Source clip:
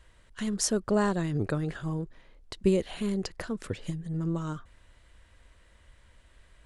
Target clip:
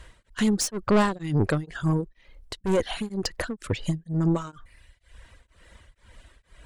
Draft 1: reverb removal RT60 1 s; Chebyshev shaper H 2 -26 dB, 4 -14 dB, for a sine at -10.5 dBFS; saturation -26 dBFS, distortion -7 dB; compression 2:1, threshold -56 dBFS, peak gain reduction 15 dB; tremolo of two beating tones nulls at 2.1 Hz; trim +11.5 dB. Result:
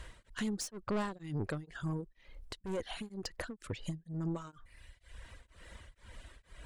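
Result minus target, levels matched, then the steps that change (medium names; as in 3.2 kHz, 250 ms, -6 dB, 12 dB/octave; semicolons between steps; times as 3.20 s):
compression: peak gain reduction +15 dB
remove: compression 2:1, threshold -56 dBFS, peak gain reduction 15 dB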